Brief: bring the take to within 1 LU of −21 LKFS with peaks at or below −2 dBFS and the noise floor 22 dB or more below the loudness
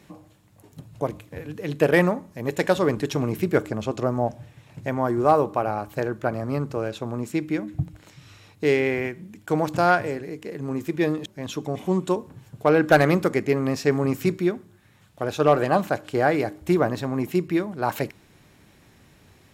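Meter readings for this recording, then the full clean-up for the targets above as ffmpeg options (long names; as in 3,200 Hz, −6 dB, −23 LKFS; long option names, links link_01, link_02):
integrated loudness −24.0 LKFS; sample peak −5.5 dBFS; target loudness −21.0 LKFS
→ -af "volume=3dB"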